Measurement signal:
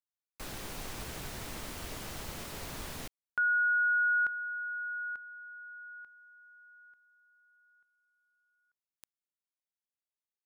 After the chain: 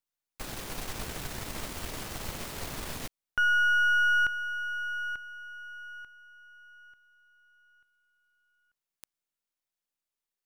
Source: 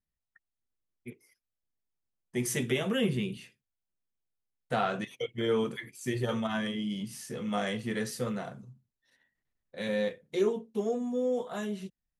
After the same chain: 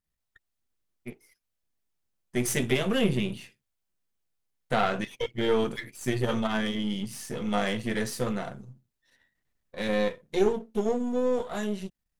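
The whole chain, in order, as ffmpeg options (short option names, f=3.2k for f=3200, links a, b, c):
-af "aeval=exprs='if(lt(val(0),0),0.447*val(0),val(0))':c=same,volume=6dB"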